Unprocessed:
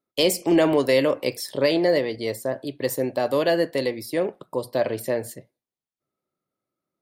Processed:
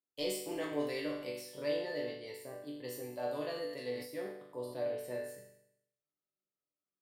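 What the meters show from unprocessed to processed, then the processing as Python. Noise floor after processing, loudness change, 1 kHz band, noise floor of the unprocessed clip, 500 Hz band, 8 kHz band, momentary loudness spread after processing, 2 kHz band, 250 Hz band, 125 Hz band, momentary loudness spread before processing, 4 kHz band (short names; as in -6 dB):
under -85 dBFS, -16.0 dB, -16.5 dB, under -85 dBFS, -16.0 dB, -15.0 dB, 9 LU, -15.5 dB, -17.5 dB, -18.0 dB, 9 LU, -16.0 dB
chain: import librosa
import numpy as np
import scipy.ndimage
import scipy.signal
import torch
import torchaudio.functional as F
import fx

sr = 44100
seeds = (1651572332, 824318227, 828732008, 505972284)

y = fx.resonator_bank(x, sr, root=43, chord='major', decay_s=0.72)
y = fx.sustainer(y, sr, db_per_s=77.0)
y = F.gain(torch.from_numpy(y), 1.0).numpy()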